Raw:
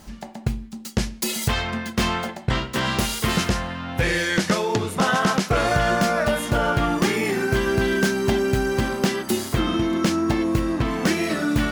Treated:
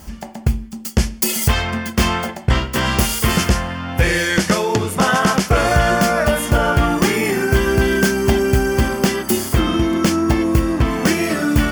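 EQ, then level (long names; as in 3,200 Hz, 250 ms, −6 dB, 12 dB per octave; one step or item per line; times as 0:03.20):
parametric band 69 Hz +12.5 dB 0.35 octaves
high-shelf EQ 11,000 Hz +8.5 dB
notch filter 3,900 Hz, Q 6.5
+4.5 dB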